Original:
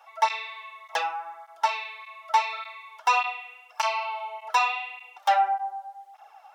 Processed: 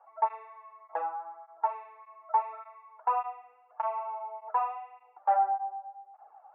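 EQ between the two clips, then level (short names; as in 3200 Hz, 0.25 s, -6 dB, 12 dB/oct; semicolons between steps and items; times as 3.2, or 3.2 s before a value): Bessel low-pass 880 Hz, order 4; air absorption 270 m; notches 50/100/150/200/250 Hz; 0.0 dB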